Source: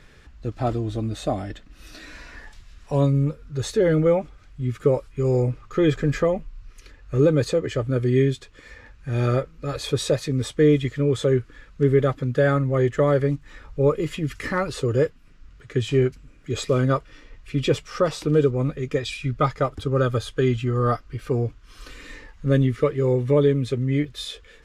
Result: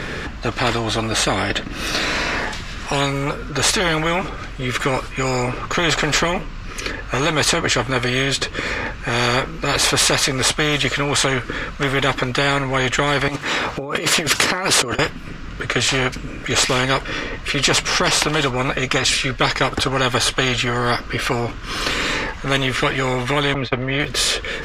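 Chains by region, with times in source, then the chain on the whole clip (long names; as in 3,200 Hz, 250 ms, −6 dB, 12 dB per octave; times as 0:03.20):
0:13.28–0:14.99: high-pass filter 290 Hz + compressor whose output falls as the input rises −35 dBFS
0:23.54–0:24.00: high-frequency loss of the air 230 metres + downward expander −24 dBFS
whole clip: low-pass filter 3,700 Hz 6 dB per octave; every bin compressed towards the loudest bin 4 to 1; level +5.5 dB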